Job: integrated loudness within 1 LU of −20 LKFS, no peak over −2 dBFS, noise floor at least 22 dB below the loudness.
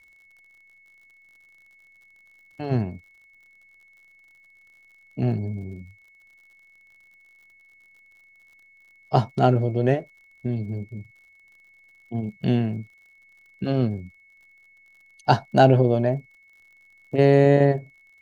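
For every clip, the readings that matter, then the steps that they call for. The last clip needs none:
crackle rate 57 per second; interfering tone 2,200 Hz; level of the tone −53 dBFS; integrated loudness −22.5 LKFS; sample peak −2.5 dBFS; target loudness −20.0 LKFS
→ click removal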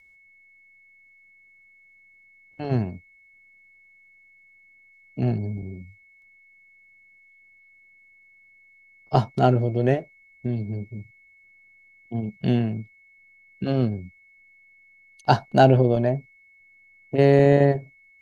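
crackle rate 0.22 per second; interfering tone 2,200 Hz; level of the tone −53 dBFS
→ notch filter 2,200 Hz, Q 30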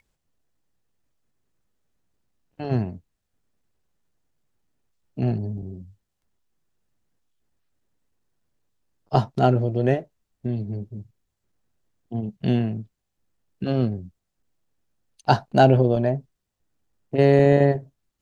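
interfering tone none found; integrated loudness −22.5 LKFS; sample peak −2.5 dBFS; target loudness −20.0 LKFS
→ level +2.5 dB
brickwall limiter −2 dBFS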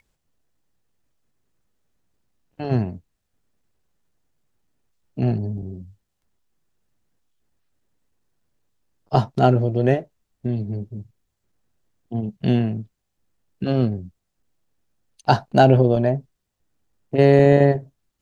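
integrated loudness −20.0 LKFS; sample peak −2.0 dBFS; background noise floor −77 dBFS

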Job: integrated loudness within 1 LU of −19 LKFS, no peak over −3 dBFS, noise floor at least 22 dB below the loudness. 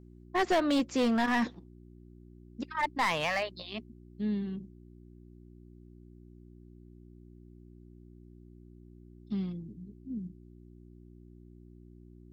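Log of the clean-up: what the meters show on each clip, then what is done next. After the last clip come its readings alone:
share of clipped samples 0.9%; peaks flattened at −22.5 dBFS; mains hum 60 Hz; hum harmonics up to 360 Hz; level of the hum −51 dBFS; integrated loudness −32.0 LKFS; sample peak −22.5 dBFS; target loudness −19.0 LKFS
→ clipped peaks rebuilt −22.5 dBFS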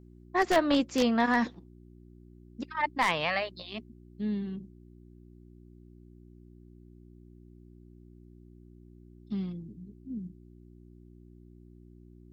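share of clipped samples 0.0%; mains hum 60 Hz; hum harmonics up to 360 Hz; level of the hum −51 dBFS
→ hum removal 60 Hz, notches 6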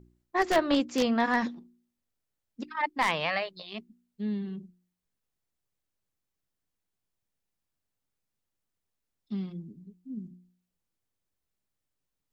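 mains hum none found; integrated loudness −29.5 LKFS; sample peak −12.5 dBFS; target loudness −19.0 LKFS
→ level +10.5 dB
brickwall limiter −3 dBFS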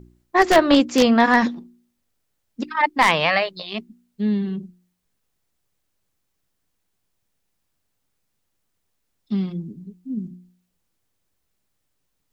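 integrated loudness −19.0 LKFS; sample peak −3.0 dBFS; background noise floor −74 dBFS

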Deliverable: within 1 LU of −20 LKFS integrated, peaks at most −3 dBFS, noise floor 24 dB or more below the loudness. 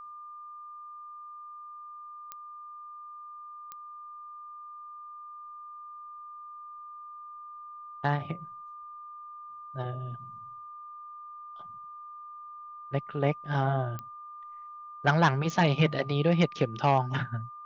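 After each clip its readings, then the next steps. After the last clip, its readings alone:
number of clicks 4; interfering tone 1,200 Hz; level of the tone −42 dBFS; integrated loudness −28.5 LKFS; sample peak −9.5 dBFS; target loudness −20.0 LKFS
→ click removal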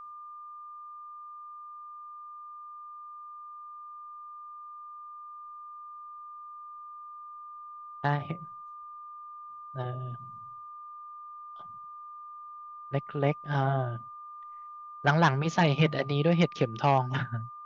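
number of clicks 0; interfering tone 1,200 Hz; level of the tone −42 dBFS
→ notch filter 1,200 Hz, Q 30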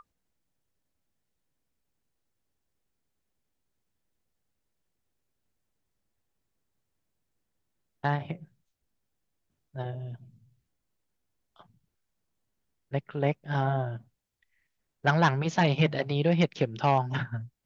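interfering tone none found; integrated loudness −28.0 LKFS; sample peak −9.5 dBFS; target loudness −20.0 LKFS
→ level +8 dB
brickwall limiter −3 dBFS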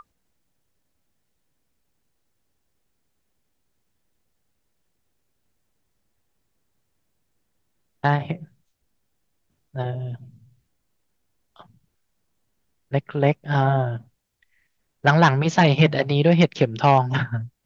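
integrated loudness −20.5 LKFS; sample peak −3.0 dBFS; background noise floor −73 dBFS

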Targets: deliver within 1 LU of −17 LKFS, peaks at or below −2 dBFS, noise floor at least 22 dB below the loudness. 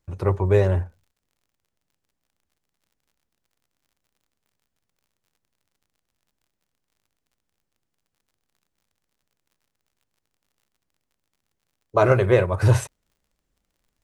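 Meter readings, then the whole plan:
crackle rate 46 per second; integrated loudness −20.5 LKFS; sample peak −4.5 dBFS; target loudness −17.0 LKFS
→ click removal
level +3.5 dB
brickwall limiter −2 dBFS

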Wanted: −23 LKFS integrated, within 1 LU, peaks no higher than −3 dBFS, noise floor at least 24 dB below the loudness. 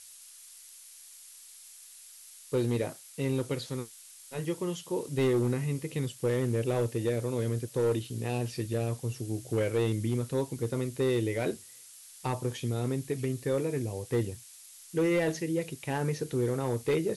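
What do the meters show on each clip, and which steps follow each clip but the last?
share of clipped samples 1.2%; peaks flattened at −21.5 dBFS; background noise floor −52 dBFS; target noise floor −56 dBFS; integrated loudness −31.5 LKFS; sample peak −21.5 dBFS; target loudness −23.0 LKFS
→ clipped peaks rebuilt −21.5 dBFS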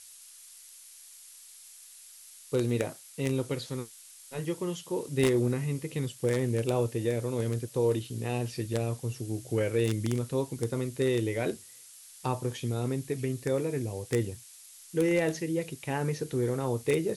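share of clipped samples 0.0%; background noise floor −52 dBFS; target noise floor −55 dBFS
→ broadband denoise 6 dB, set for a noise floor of −52 dBFS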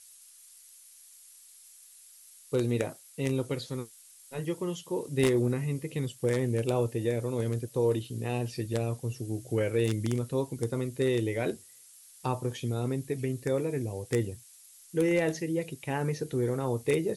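background noise floor −55 dBFS; integrated loudness −31.0 LKFS; sample peak −12.0 dBFS; target loudness −23.0 LKFS
→ level +8 dB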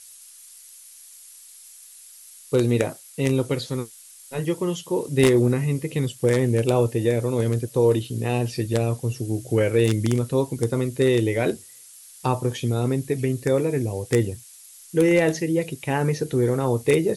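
integrated loudness −23.0 LKFS; sample peak −4.0 dBFS; background noise floor −47 dBFS

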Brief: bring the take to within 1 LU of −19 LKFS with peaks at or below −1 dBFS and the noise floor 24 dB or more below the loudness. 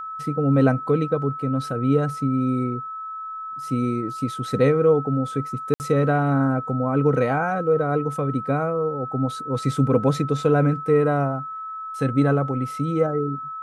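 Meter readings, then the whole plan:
number of dropouts 1; longest dropout 59 ms; interfering tone 1,300 Hz; level of the tone −30 dBFS; integrated loudness −22.5 LKFS; sample peak −6.5 dBFS; target loudness −19.0 LKFS
→ repair the gap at 0:05.74, 59 ms
notch filter 1,300 Hz, Q 30
level +3.5 dB

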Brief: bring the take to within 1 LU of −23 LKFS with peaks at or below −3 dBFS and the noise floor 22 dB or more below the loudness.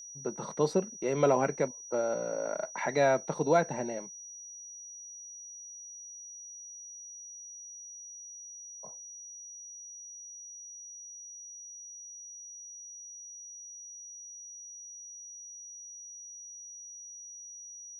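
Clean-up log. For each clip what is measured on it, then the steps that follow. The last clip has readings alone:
interfering tone 5,800 Hz; level of the tone −44 dBFS; integrated loudness −36.0 LKFS; sample peak −12.5 dBFS; target loudness −23.0 LKFS
→ notch filter 5,800 Hz, Q 30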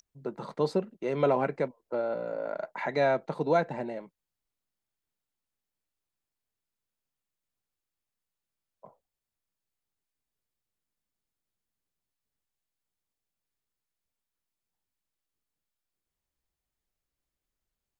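interfering tone none found; integrated loudness −30.5 LKFS; sample peak −12.5 dBFS; target loudness −23.0 LKFS
→ level +7.5 dB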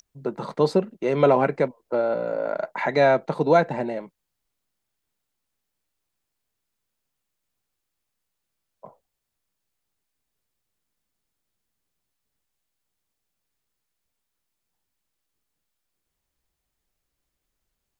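integrated loudness −23.0 LKFS; sample peak −5.0 dBFS; background noise floor −81 dBFS

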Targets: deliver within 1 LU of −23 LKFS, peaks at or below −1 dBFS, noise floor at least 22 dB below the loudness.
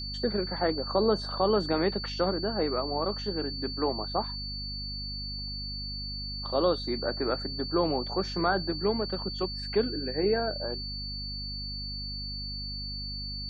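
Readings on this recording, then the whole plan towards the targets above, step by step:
mains hum 50 Hz; hum harmonics up to 250 Hz; level of the hum −37 dBFS; interfering tone 4,500 Hz; level of the tone −36 dBFS; integrated loudness −30.5 LKFS; sample peak −12.5 dBFS; target loudness −23.0 LKFS
→ hum removal 50 Hz, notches 5
notch filter 4,500 Hz, Q 30
level +7.5 dB

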